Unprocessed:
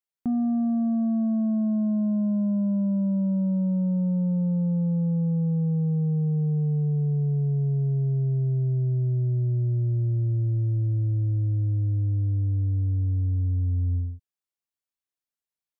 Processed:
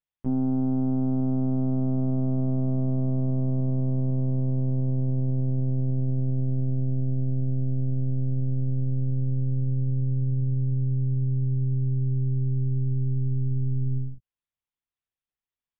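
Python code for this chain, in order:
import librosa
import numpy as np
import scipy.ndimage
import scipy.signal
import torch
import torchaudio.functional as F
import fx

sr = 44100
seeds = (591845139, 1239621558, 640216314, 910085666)

y = fx.lpc_monotone(x, sr, seeds[0], pitch_hz=130.0, order=8)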